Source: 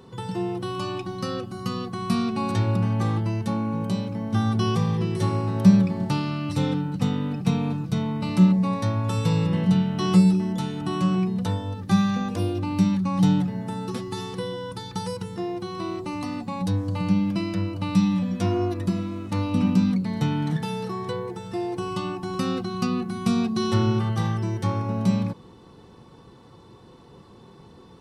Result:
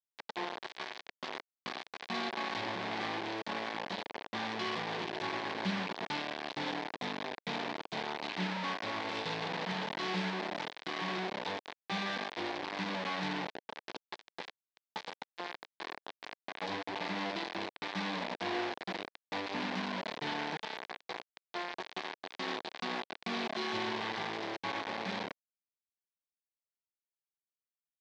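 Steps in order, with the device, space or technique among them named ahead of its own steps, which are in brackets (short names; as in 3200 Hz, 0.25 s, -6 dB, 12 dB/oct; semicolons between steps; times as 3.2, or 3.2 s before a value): hand-held game console (bit-crush 4-bit; speaker cabinet 460–4100 Hz, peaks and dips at 540 Hz -6 dB, 1300 Hz -9 dB, 2800 Hz -4 dB); gain -6.5 dB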